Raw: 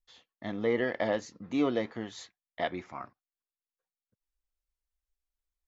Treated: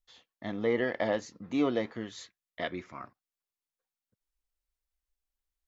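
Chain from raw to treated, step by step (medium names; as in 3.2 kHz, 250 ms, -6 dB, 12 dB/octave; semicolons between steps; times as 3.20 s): 1.95–3.03 s: peaking EQ 800 Hz -11.5 dB 0.37 oct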